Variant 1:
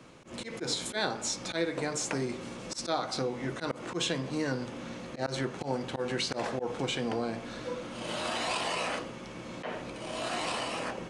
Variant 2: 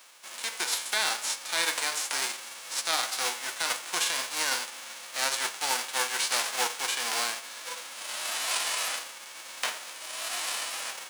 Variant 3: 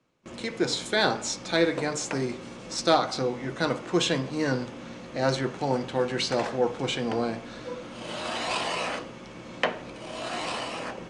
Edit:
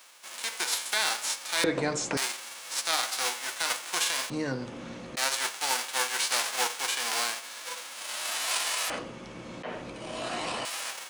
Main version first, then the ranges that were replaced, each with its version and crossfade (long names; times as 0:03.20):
2
0:01.64–0:02.17: punch in from 3
0:04.30–0:05.17: punch in from 1
0:08.90–0:10.65: punch in from 1